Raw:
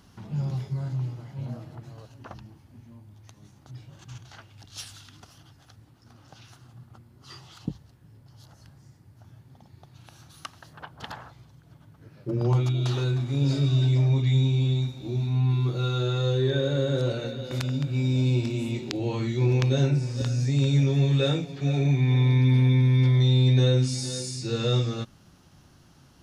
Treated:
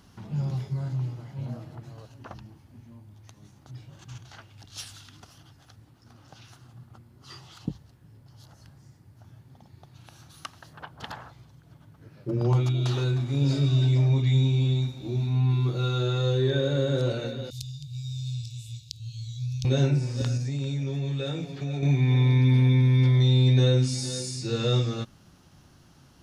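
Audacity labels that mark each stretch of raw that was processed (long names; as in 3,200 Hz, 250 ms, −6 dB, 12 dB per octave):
17.500000	19.650000	inverse Chebyshev band-stop filter 240–1,700 Hz, stop band 50 dB
20.370000	21.830000	downward compressor 5 to 1, threshold −27 dBFS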